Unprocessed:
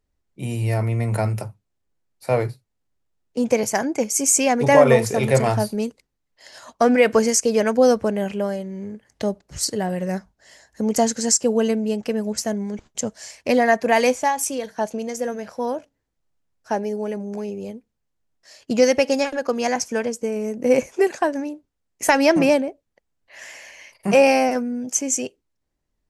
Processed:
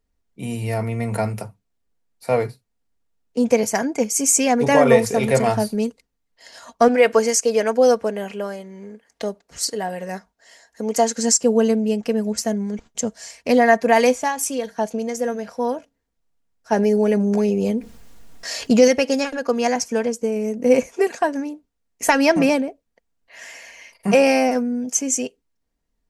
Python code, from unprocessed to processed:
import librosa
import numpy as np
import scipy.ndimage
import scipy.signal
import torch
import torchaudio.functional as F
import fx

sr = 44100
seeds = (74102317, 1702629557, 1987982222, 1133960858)

y = fx.bass_treble(x, sr, bass_db=-13, treble_db=-1, at=(6.88, 11.18))
y = fx.env_flatten(y, sr, amount_pct=50, at=(16.72, 18.88))
y = y + 0.41 * np.pad(y, (int(4.3 * sr / 1000.0), 0))[:len(y)]